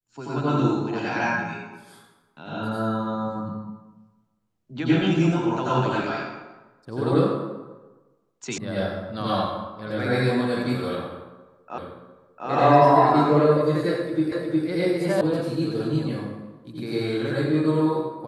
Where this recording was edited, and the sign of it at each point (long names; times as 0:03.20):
0:08.58: cut off before it has died away
0:11.78: the same again, the last 0.7 s
0:14.32: the same again, the last 0.36 s
0:15.21: cut off before it has died away